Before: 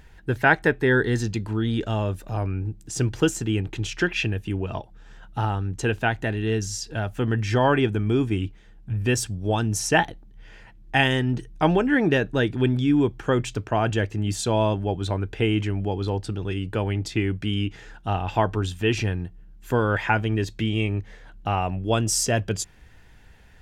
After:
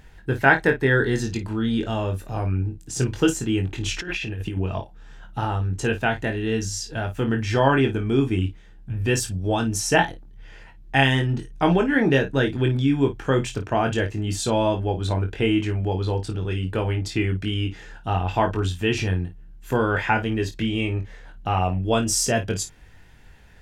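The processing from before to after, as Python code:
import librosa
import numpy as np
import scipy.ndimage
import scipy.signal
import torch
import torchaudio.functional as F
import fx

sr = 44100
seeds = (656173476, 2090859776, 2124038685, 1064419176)

y = fx.room_early_taps(x, sr, ms=(22, 53), db=(-5.0, -12.5))
y = fx.over_compress(y, sr, threshold_db=-29.0, ratio=-1.0, at=(3.86, 4.57))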